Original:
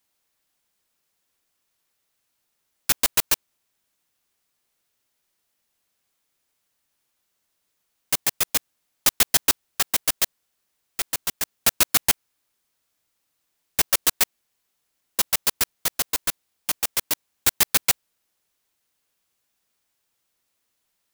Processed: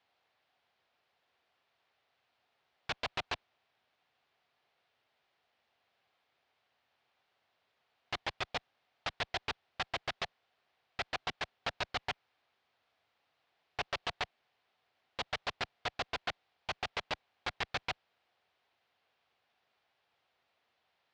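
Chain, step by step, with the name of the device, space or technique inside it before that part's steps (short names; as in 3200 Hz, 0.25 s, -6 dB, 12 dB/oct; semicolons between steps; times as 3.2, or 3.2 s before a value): guitar amplifier (tube stage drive 31 dB, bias 0.65; tone controls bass -2 dB, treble -6 dB; speaker cabinet 83–4300 Hz, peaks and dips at 190 Hz -8 dB, 300 Hz -7 dB, 730 Hz +7 dB); gain +7 dB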